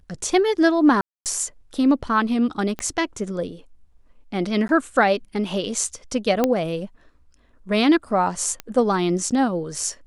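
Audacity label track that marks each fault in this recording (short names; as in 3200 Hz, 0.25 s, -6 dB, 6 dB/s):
1.010000	1.260000	gap 0.248 s
2.790000	2.790000	pop -15 dBFS
4.680000	4.690000	gap
6.440000	6.440000	pop -6 dBFS
8.600000	8.600000	pop -14 dBFS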